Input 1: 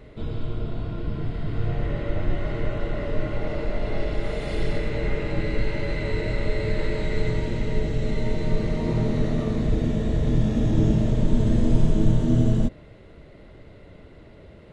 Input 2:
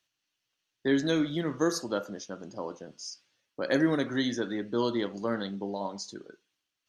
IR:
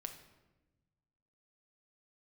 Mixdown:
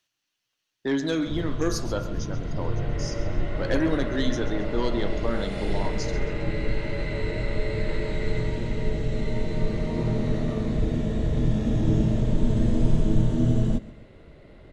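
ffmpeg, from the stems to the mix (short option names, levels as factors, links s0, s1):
-filter_complex "[0:a]adelay=1100,volume=0.794,asplit=2[s0][s1];[s1]volume=0.106[s2];[1:a]aeval=exprs='0.237*sin(PI/2*1.58*val(0)/0.237)':c=same,volume=0.501,asplit=2[s3][s4];[s4]volume=0.2[s5];[s2][s5]amix=inputs=2:normalize=0,aecho=0:1:135|270|405|540|675:1|0.38|0.144|0.0549|0.0209[s6];[s0][s3][s6]amix=inputs=3:normalize=0"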